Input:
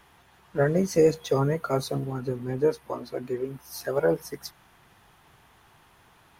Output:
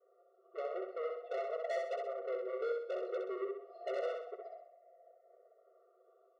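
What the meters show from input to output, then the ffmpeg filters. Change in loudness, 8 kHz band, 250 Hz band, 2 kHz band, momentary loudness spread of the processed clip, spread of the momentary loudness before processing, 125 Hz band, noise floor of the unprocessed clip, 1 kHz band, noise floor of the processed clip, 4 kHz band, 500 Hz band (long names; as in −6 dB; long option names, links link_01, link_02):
−13.0 dB, below −25 dB, below −20 dB, −11.5 dB, 9 LU, 13 LU, below −40 dB, −59 dBFS, −9.0 dB, −70 dBFS, −16.5 dB, −11.5 dB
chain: -af "afftfilt=real='re*pow(10,11/40*sin(2*PI*(0.59*log(max(b,1)*sr/1024/100)/log(2)-(-0.35)*(pts-256)/sr)))':imag='im*pow(10,11/40*sin(2*PI*(0.59*log(max(b,1)*sr/1024/100)/log(2)-(-0.35)*(pts-256)/sr)))':win_size=1024:overlap=0.75,agate=range=-33dB:threshold=-47dB:ratio=3:detection=peak,highpass=45,lowshelf=frequency=120:gain=10,aecho=1:1:5.9:0.62,acompressor=threshold=-33dB:ratio=4,aresample=11025,asoftclip=type=hard:threshold=-31dB,aresample=44100,lowpass=frequency=610:width_type=q:width=4.9,asoftclip=type=tanh:threshold=-35dB,aecho=1:1:64|128|192|256|320:0.631|0.271|0.117|0.0502|0.0216,afftfilt=real='re*eq(mod(floor(b*sr/1024/370),2),1)':imag='im*eq(mod(floor(b*sr/1024/370),2),1)':win_size=1024:overlap=0.75,volume=1dB"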